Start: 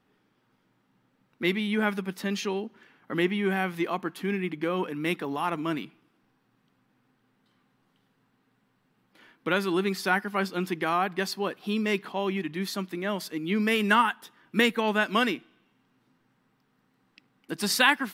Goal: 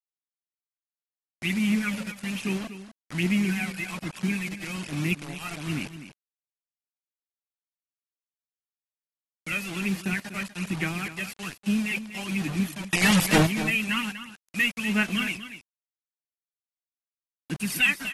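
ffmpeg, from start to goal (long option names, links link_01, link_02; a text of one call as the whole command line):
ffmpeg -i in.wav -filter_complex "[0:a]asettb=1/sr,asplit=3[link_01][link_02][link_03];[link_01]atrim=end=9.524[link_04];[link_02]atrim=start=9.52:end=10.13,asetpts=PTS-STARTPTS,afade=type=in:duration=0.004:curve=qsin,afade=type=out:start_time=0.606:duration=0.004:curve=qsin,highpass=110[link_05];[link_03]atrim=start=10.126[link_06];[link_04][link_05]acrossfade=duration=0.004:curve1=hsin:curve2=qsin[link_07];[link_07][link_06]acrossfade=duration=0.004:curve1=qsin:curve2=hsin,agate=range=-33dB:threshold=-52dB:ratio=3:detection=peak,firequalizer=gain_entry='entry(140,0);entry(480,-23);entry(910,-21);entry(2500,3);entry(3900,-19);entry(12000,-1)':delay=0.05:min_phase=1,aphaser=in_gain=1:out_gain=1:delay=1.6:decay=0.68:speed=1.2:type=sinusoidal,asplit=2[link_08][link_09];[link_09]asoftclip=type=hard:threshold=-22.5dB,volume=-6.5dB[link_10];[link_08][link_10]amix=inputs=2:normalize=0,acrusher=bits=5:mix=0:aa=0.000001,asplit=3[link_11][link_12][link_13];[link_11]afade=type=out:start_time=12.85:duration=0.02[link_14];[link_12]aeval=exprs='0.2*sin(PI/2*5.01*val(0)/0.2)':channel_layout=same,afade=type=in:start_time=12.85:duration=0.02,afade=type=out:start_time=13.45:duration=0.02[link_15];[link_13]afade=type=in:start_time=13.45:duration=0.02[link_16];[link_14][link_15][link_16]amix=inputs=3:normalize=0,aecho=1:1:243:0.251,volume=-2dB" -ar 44100 -c:a aac -b:a 32k out.aac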